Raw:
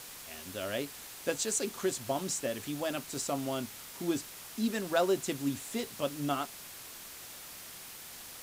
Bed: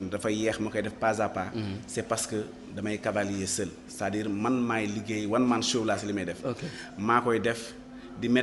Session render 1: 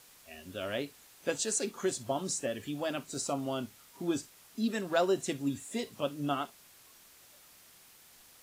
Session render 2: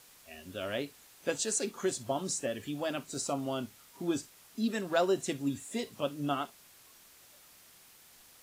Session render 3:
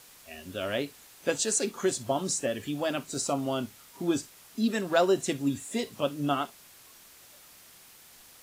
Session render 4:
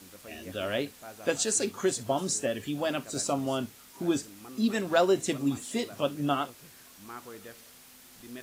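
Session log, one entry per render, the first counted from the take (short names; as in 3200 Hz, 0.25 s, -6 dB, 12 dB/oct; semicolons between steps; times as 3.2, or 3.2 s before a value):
noise print and reduce 11 dB
nothing audible
gain +4.5 dB
add bed -20 dB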